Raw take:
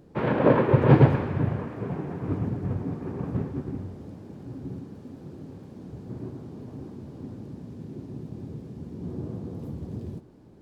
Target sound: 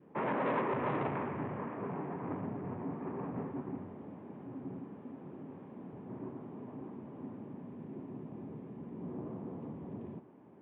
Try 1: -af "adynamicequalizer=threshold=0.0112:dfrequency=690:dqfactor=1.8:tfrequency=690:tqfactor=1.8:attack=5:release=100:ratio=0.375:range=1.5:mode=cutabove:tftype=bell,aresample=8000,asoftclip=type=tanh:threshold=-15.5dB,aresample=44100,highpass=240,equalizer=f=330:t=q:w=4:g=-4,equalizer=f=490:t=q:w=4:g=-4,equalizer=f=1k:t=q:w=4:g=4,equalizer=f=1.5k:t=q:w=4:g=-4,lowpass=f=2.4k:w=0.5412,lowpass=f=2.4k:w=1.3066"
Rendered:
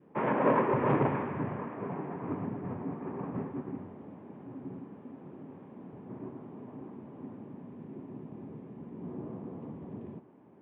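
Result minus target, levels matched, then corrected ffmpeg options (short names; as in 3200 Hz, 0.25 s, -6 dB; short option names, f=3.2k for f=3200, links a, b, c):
soft clip: distortion -8 dB
-af "adynamicequalizer=threshold=0.0112:dfrequency=690:dqfactor=1.8:tfrequency=690:tqfactor=1.8:attack=5:release=100:ratio=0.375:range=1.5:mode=cutabove:tftype=bell,aresample=8000,asoftclip=type=tanh:threshold=-27.5dB,aresample=44100,highpass=240,equalizer=f=330:t=q:w=4:g=-4,equalizer=f=490:t=q:w=4:g=-4,equalizer=f=1k:t=q:w=4:g=4,equalizer=f=1.5k:t=q:w=4:g=-4,lowpass=f=2.4k:w=0.5412,lowpass=f=2.4k:w=1.3066"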